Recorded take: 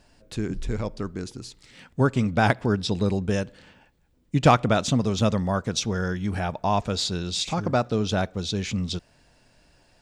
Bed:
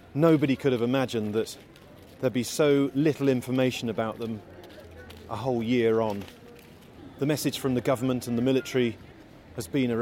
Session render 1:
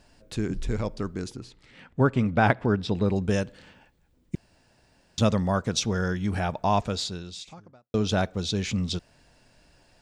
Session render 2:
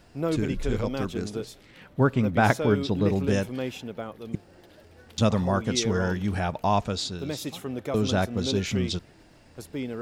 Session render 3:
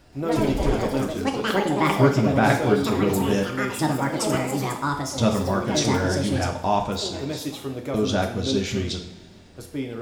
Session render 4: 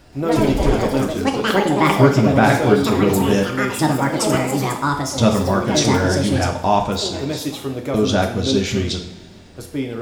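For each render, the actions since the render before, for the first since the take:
1.36–3.16 tone controls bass -1 dB, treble -13 dB; 4.35–5.18 room tone; 6.78–7.94 fade out quadratic
add bed -7 dB
echoes that change speed 0.127 s, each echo +6 st, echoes 2; two-slope reverb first 0.53 s, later 2.3 s, from -17 dB, DRR 2.5 dB
gain +5.5 dB; limiter -2 dBFS, peak gain reduction 2.5 dB

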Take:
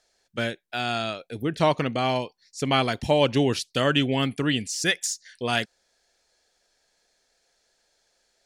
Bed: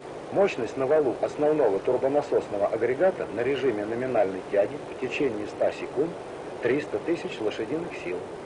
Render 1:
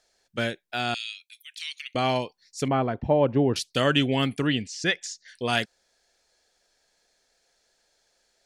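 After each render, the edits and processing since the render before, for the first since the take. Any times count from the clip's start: 0.94–1.95 steep high-pass 2300 Hz; 2.68–3.56 LPF 1100 Hz; 4.47–5.28 air absorption 110 m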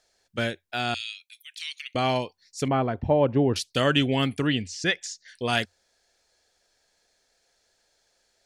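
bell 89 Hz +9 dB 0.31 oct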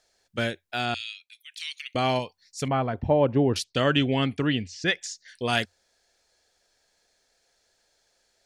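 0.85–1.52 high shelf 8200 Hz -11 dB; 2.19–2.93 bell 340 Hz -6.5 dB; 3.64–4.88 air absorption 88 m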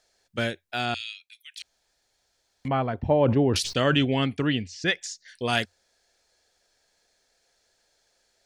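1.62–2.65 room tone; 3.23–4.05 sustainer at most 47 dB/s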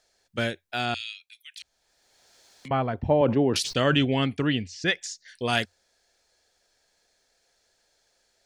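1.55–2.71 three-band squash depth 70%; 3.21–3.71 HPF 150 Hz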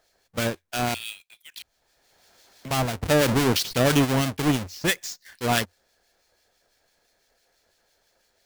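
half-waves squared off; harmonic tremolo 6 Hz, depth 50%, crossover 1800 Hz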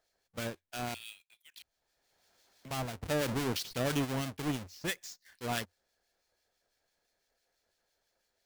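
gain -12 dB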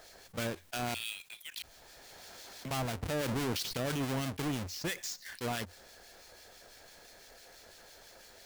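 limiter -26.5 dBFS, peak gain reduction 10 dB; fast leveller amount 50%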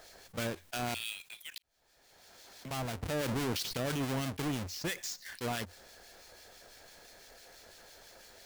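1.58–3.18 fade in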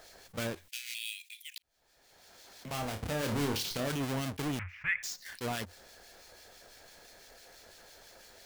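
0.68–1.57 steep high-pass 2000 Hz 48 dB/oct; 2.65–3.88 flutter echo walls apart 4.8 m, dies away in 0.27 s; 4.59–5.03 EQ curve 120 Hz 0 dB, 290 Hz -30 dB, 640 Hz -18 dB, 1400 Hz +6 dB, 2300 Hz +13 dB, 4300 Hz -29 dB

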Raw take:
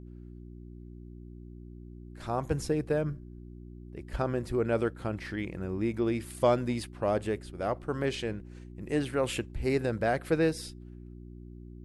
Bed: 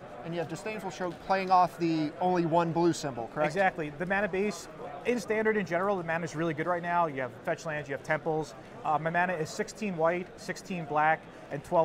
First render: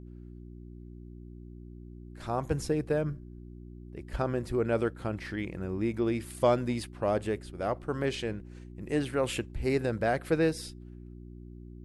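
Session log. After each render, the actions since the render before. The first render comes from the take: nothing audible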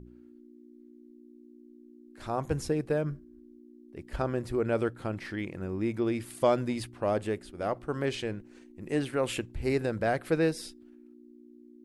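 de-hum 60 Hz, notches 3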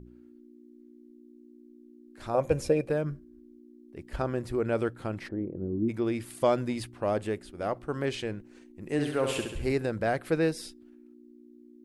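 2.34–2.9 small resonant body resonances 550/2400 Hz, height 17 dB; 5.27–5.88 synth low-pass 600 Hz -> 260 Hz, resonance Q 1.7; 8.92–9.72 flutter echo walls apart 11.7 m, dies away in 0.76 s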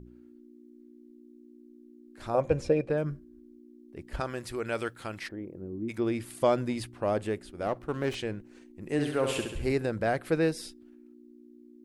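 2.41–2.98 air absorption 80 m; 4.2–5.98 tilt shelf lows -7.5 dB, about 1100 Hz; 7.66–8.15 running maximum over 5 samples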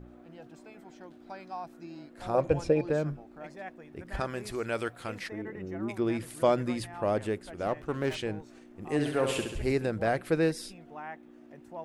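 add bed -16.5 dB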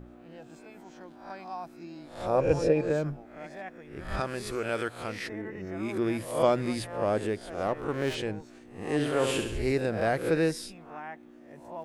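spectral swells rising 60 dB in 0.50 s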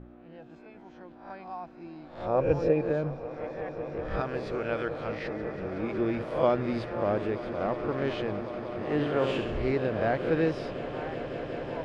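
air absorption 230 m; on a send: swelling echo 0.185 s, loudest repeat 8, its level -17 dB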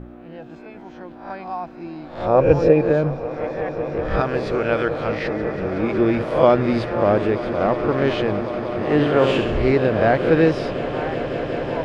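gain +10.5 dB; limiter -2 dBFS, peak gain reduction 1 dB

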